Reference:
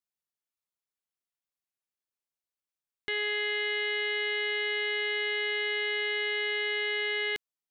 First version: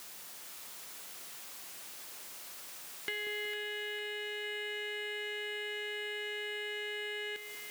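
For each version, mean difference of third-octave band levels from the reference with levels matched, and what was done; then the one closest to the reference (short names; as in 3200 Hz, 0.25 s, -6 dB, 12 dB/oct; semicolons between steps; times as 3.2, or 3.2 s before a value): 8.5 dB: zero-crossing step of -40 dBFS; HPF 260 Hz 6 dB/oct; compressor, threshold -36 dBFS, peak gain reduction 9.5 dB; on a send: split-band echo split 1100 Hz, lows 0.186 s, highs 0.453 s, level -7.5 dB; on the sum: gain +1 dB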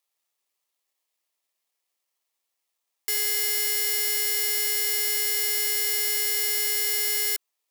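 14.0 dB: careless resampling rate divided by 6×, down none, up zero stuff; limiter -13.5 dBFS, peak gain reduction 7 dB; HPF 410 Hz; notch 1500 Hz, Q 5.9; gain +4.5 dB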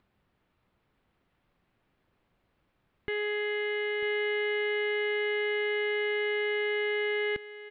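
2.0 dB: low shelf 320 Hz +11 dB; upward compressor, threshold -47 dBFS; air absorption 490 m; echo 0.945 s -13.5 dB; gain +1.5 dB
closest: third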